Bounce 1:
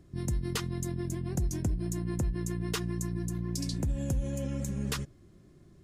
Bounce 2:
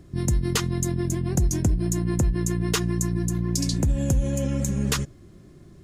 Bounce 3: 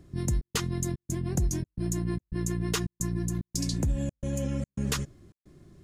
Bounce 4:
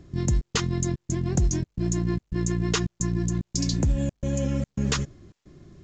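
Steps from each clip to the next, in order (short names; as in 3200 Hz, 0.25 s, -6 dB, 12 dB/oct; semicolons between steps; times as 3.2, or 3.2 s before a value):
dynamic EQ 6700 Hz, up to +5 dB, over -55 dBFS, Q 4.9; gain +8.5 dB
step gate "xxx.xxx.x" 110 bpm -60 dB; gain -5 dB
gain +4.5 dB; µ-law 128 kbps 16000 Hz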